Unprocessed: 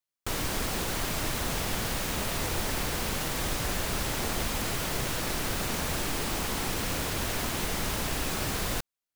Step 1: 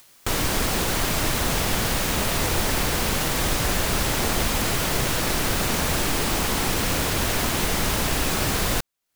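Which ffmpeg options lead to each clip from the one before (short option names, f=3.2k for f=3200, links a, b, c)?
-af "acompressor=mode=upward:threshold=-37dB:ratio=2.5,volume=7.5dB"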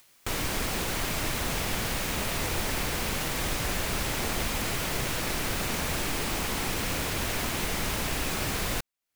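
-af "equalizer=f=2.3k:w=2.2:g=3,volume=-7dB"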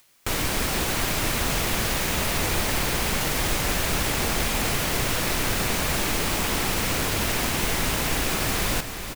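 -filter_complex "[0:a]asplit=2[a][b];[b]acrusher=bits=4:mix=0:aa=0.000001,volume=-3.5dB[c];[a][c]amix=inputs=2:normalize=0,aecho=1:1:383|766|1149|1532|1915|2298:0.316|0.177|0.0992|0.0555|0.0311|0.0174"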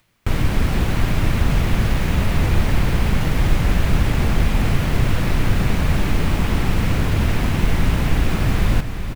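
-af "bass=f=250:g=13,treble=f=4k:g=-11"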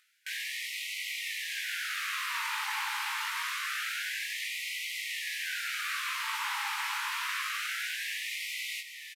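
-af "aresample=32000,aresample=44100,flanger=delay=18:depth=3.2:speed=0.64,afftfilt=real='re*gte(b*sr/1024,790*pow(1900/790,0.5+0.5*sin(2*PI*0.26*pts/sr)))':imag='im*gte(b*sr/1024,790*pow(1900/790,0.5+0.5*sin(2*PI*0.26*pts/sr)))':win_size=1024:overlap=0.75"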